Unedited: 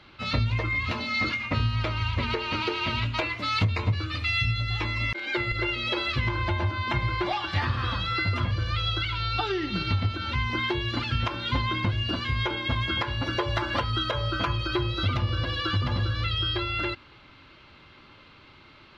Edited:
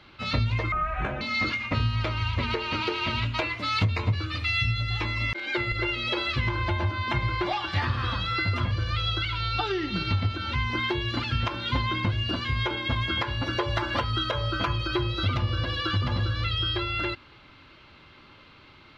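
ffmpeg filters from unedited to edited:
ffmpeg -i in.wav -filter_complex "[0:a]asplit=3[link_01][link_02][link_03];[link_01]atrim=end=0.724[link_04];[link_02]atrim=start=0.72:end=1.01,asetpts=PTS-STARTPTS,asetrate=26019,aresample=44100,atrim=end_sample=21676,asetpts=PTS-STARTPTS[link_05];[link_03]atrim=start=1.006[link_06];[link_04][link_05]acrossfade=duration=0.004:curve1=hsin:curve2=hsin[link_07];[link_07][link_06]acrossfade=duration=0.004:curve1=hsin:curve2=hsin" out.wav

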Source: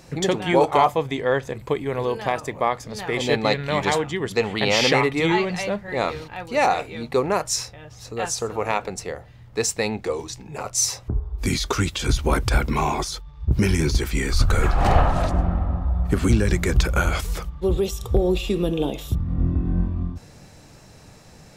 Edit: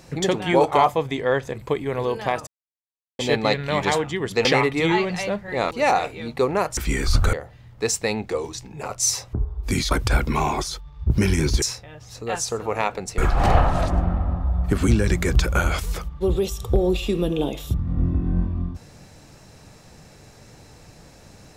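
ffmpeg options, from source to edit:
ffmpeg -i in.wav -filter_complex "[0:a]asplit=10[link_01][link_02][link_03][link_04][link_05][link_06][link_07][link_08][link_09][link_10];[link_01]atrim=end=2.47,asetpts=PTS-STARTPTS,afade=type=out:start_time=2.466:duration=0.004:curve=hsin[link_11];[link_02]atrim=start=2.47:end=3.19,asetpts=PTS-STARTPTS,volume=0[link_12];[link_03]atrim=start=3.19:end=4.452,asetpts=PTS-STARTPTS,afade=type=in:duration=0.004:curve=hsin[link_13];[link_04]atrim=start=4.848:end=6.112[link_14];[link_05]atrim=start=6.458:end=7.522[link_15];[link_06]atrim=start=14.028:end=14.592[link_16];[link_07]atrim=start=9.078:end=11.662[link_17];[link_08]atrim=start=12.318:end=14.032[link_18];[link_09]atrim=start=7.518:end=9.082[link_19];[link_10]atrim=start=14.588[link_20];[link_11][link_12][link_13]concat=n=3:v=0:a=1[link_21];[link_21][link_14]acrossfade=duration=0.004:curve1=hsin:curve2=hsin[link_22];[link_22][link_15]acrossfade=duration=0.004:curve1=hsin:curve2=hsin[link_23];[link_23][link_16]acrossfade=duration=0.004:curve1=hsin:curve2=hsin[link_24];[link_24][link_17]acrossfade=duration=0.004:curve1=hsin:curve2=hsin[link_25];[link_25][link_18]acrossfade=duration=0.004:curve1=hsin:curve2=hsin[link_26];[link_26][link_19]acrossfade=duration=0.004:curve1=hsin:curve2=hsin[link_27];[link_27][link_20]acrossfade=duration=0.004:curve1=hsin:curve2=hsin" out.wav

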